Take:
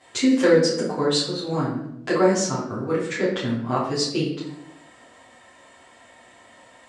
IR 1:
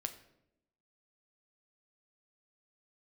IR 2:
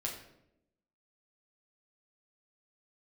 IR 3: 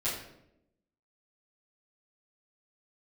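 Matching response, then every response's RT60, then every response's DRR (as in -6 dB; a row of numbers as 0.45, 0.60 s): 3; 0.80, 0.80, 0.80 s; 7.0, -2.0, -11.5 dB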